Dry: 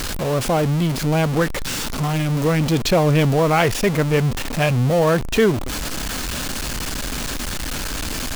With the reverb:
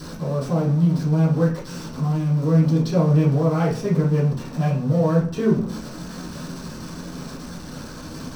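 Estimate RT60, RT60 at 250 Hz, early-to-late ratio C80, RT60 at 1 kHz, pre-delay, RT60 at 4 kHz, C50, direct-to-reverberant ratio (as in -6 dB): 0.45 s, 0.70 s, 11.5 dB, 0.45 s, 3 ms, 0.40 s, 7.0 dB, -10.0 dB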